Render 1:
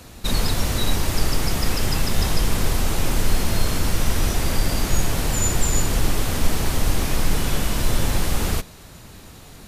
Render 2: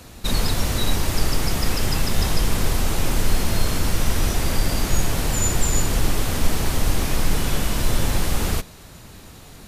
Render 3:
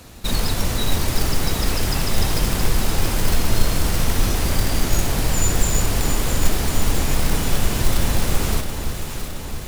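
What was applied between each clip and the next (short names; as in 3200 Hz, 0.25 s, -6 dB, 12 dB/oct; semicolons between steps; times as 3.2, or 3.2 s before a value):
nothing audible
short-mantissa float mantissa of 2-bit; echo with dull and thin repeats by turns 0.335 s, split 1000 Hz, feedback 79%, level -6 dB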